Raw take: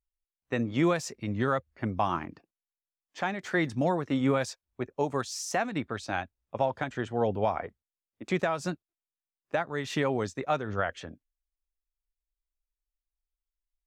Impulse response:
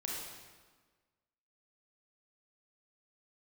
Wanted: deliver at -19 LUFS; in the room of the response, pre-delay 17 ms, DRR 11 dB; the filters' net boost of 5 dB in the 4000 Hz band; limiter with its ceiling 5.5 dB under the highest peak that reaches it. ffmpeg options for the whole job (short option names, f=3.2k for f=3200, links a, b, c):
-filter_complex "[0:a]equalizer=f=4k:t=o:g=6.5,alimiter=limit=-19dB:level=0:latency=1,asplit=2[a][b];[1:a]atrim=start_sample=2205,adelay=17[c];[b][c]afir=irnorm=-1:irlink=0,volume=-12.5dB[d];[a][d]amix=inputs=2:normalize=0,volume=13dB"